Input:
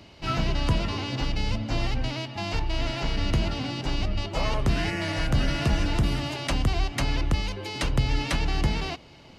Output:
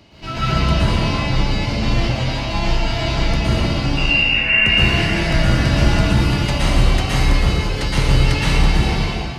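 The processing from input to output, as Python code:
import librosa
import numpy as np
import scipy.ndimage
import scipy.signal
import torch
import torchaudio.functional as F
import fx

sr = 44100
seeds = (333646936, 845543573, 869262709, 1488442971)

y = fx.freq_invert(x, sr, carrier_hz=2800, at=(3.97, 4.66))
y = fx.rev_plate(y, sr, seeds[0], rt60_s=2.1, hf_ratio=0.8, predelay_ms=105, drr_db=-9.5)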